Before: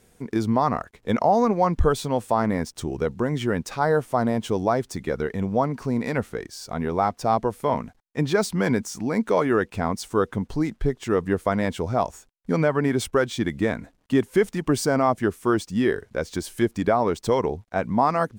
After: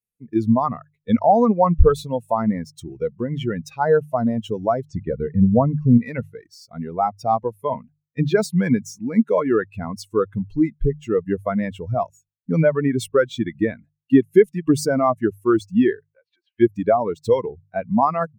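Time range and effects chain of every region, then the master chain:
0:04.89–0:05.98: low-pass filter 7,700 Hz 24 dB per octave + spectral tilt −2 dB per octave + upward compression, threshold −35 dBFS
0:16.02–0:16.60: downward compressor 8 to 1, threshold −32 dBFS + flat-topped band-pass 1,200 Hz, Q 0.57
whole clip: spectral dynamics exaggerated over time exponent 2; tilt shelving filter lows +4 dB, about 870 Hz; mains-hum notches 50/100/150 Hz; level +6.5 dB

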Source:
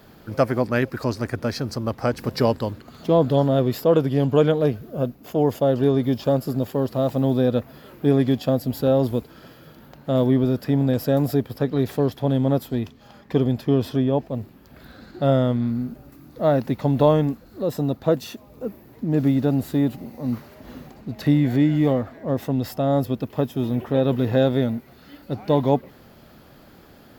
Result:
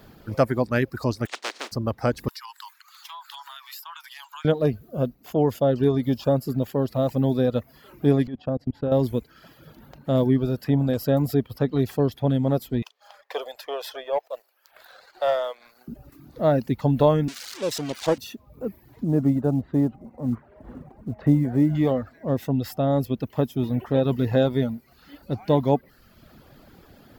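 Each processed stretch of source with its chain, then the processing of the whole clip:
0:01.25–0:01.71: compressing power law on the bin magnitudes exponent 0.13 + high-pass filter 280 Hz 24 dB per octave + high-frequency loss of the air 130 metres
0:02.28–0:04.45: Butterworth high-pass 900 Hz 72 dB per octave + high-shelf EQ 3,700 Hz +6.5 dB + downward compressor 10 to 1, threshold −34 dBFS
0:08.27–0:08.92: low-pass filter 2,200 Hz + output level in coarse steps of 23 dB
0:12.82–0:15.88: Butterworth high-pass 530 Hz + leveller curve on the samples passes 1
0:17.28–0:18.18: spike at every zero crossing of −14 dBFS + three-way crossover with the lows and the highs turned down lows −12 dB, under 340 Hz, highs −22 dB, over 6,900 Hz + highs frequency-modulated by the lows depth 0.22 ms
0:19.04–0:21.75: low-pass filter 1,300 Hz + log-companded quantiser 8 bits
whole clip: reverb reduction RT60 0.74 s; low-shelf EQ 100 Hz +5.5 dB; level −1 dB

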